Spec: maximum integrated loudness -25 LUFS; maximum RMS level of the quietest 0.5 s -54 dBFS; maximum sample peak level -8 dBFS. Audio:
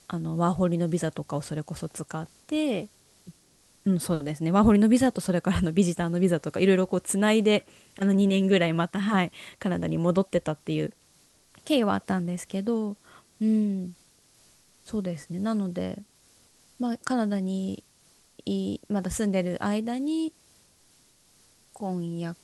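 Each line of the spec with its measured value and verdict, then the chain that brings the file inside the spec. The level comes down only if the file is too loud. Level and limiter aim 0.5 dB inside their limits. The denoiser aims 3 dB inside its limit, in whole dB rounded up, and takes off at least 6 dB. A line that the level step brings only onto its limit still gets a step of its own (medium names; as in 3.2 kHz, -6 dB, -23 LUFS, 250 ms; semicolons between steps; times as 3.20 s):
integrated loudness -26.5 LUFS: pass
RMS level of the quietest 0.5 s -61 dBFS: pass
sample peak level -10.0 dBFS: pass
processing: none needed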